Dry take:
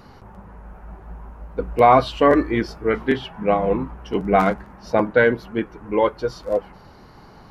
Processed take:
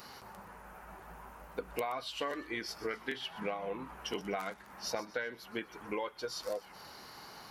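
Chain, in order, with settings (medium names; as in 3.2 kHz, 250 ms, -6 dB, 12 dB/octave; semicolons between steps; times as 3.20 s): tilt EQ +4 dB/octave; compression 12:1, threshold -31 dBFS, peak gain reduction 21.5 dB; on a send: feedback echo behind a high-pass 124 ms, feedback 42%, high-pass 3.1 kHz, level -14 dB; on the sum: trim -3 dB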